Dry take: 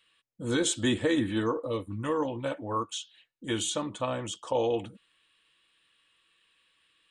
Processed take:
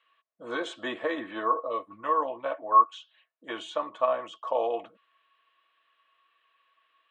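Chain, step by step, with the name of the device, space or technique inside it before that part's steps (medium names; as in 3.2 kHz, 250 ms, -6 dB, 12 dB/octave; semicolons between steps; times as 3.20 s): tin-can telephone (band-pass 570–2100 Hz; small resonant body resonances 660/1100 Hz, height 15 dB, ringing for 70 ms); trim +1.5 dB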